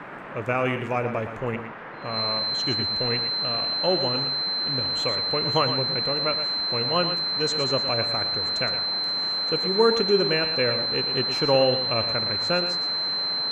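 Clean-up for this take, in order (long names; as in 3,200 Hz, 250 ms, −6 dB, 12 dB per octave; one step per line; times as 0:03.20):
notch filter 4,100 Hz, Q 30
noise reduction from a noise print 30 dB
echo removal 116 ms −10 dB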